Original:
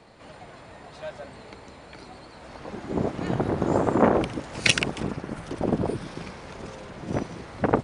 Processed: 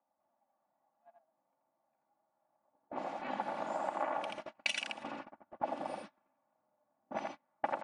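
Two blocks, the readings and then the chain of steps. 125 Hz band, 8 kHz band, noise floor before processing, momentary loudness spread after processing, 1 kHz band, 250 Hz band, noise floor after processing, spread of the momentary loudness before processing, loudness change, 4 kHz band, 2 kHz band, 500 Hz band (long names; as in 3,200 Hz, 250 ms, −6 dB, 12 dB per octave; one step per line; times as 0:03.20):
−31.0 dB, −17.0 dB, −47 dBFS, 11 LU, −7.5 dB, −22.0 dB, −83 dBFS, 23 LU, −13.5 dB, −13.0 dB, −12.0 dB, −15.0 dB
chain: upward compression, threshold −32 dBFS
dynamic equaliser 2,600 Hz, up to +5 dB, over −47 dBFS, Q 1.6
frequency shifter +78 Hz
mains-hum notches 60/120/180/240/300 Hz
noise gate −29 dBFS, range −37 dB
low-pass that shuts in the quiet parts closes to 840 Hz, open at −20 dBFS
on a send: single-tap delay 83 ms −4 dB
on the sum: downward compressor 12 to 1, threshold −30 dBFS, peak gain reduction 20 dB
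low shelf with overshoot 560 Hz −7.5 dB, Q 3
comb filter 3.5 ms, depth 56%
level −3.5 dB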